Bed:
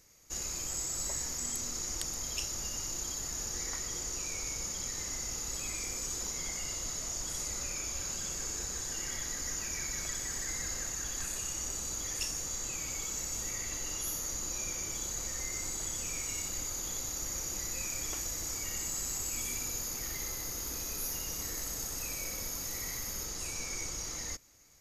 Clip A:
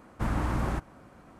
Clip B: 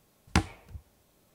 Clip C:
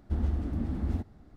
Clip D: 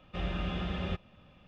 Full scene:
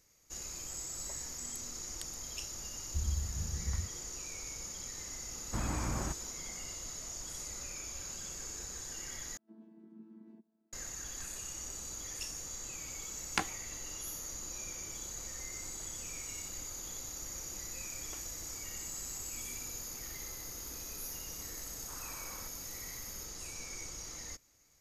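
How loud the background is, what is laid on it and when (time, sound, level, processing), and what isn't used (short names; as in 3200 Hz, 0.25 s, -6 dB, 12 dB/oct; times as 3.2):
bed -6 dB
2.84 add C -5 dB + inverse Chebyshev band-stop 420–1500 Hz, stop band 60 dB
5.33 add A -7 dB
9.37 replace with C -18 dB + chord vocoder bare fifth, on A3
13.02 add B -4 dB + weighting filter A
21.68 add A -6 dB + ladder band-pass 1400 Hz, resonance 30%
not used: D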